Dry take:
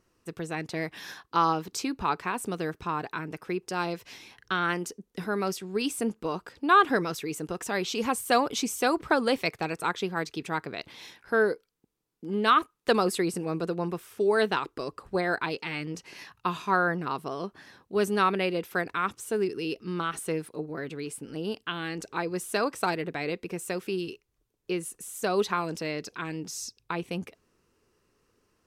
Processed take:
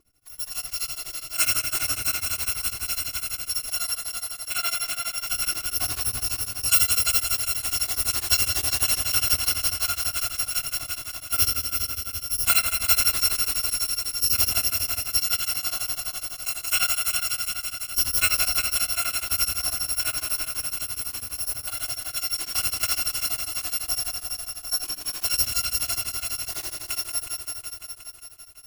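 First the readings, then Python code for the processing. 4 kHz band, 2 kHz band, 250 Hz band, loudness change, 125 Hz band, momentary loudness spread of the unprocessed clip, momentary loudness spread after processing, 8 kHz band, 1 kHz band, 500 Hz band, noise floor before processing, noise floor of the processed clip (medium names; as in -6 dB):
+12.0 dB, -0.5 dB, -17.5 dB, +6.0 dB, -2.0 dB, 12 LU, 10 LU, +16.5 dB, -8.0 dB, -17.0 dB, -74 dBFS, -43 dBFS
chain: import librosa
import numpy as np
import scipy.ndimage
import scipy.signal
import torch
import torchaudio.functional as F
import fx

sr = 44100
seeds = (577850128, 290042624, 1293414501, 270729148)

p1 = fx.bit_reversed(x, sr, seeds[0], block=256)
p2 = p1 + fx.echo_heads(p1, sr, ms=183, heads='first and second', feedback_pct=65, wet_db=-7.5, dry=0)
p3 = fx.room_shoebox(p2, sr, seeds[1], volume_m3=2500.0, walls='furnished', distance_m=3.4)
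p4 = p3 * np.abs(np.cos(np.pi * 12.0 * np.arange(len(p3)) / sr))
y = p4 * 10.0 ** (1.5 / 20.0)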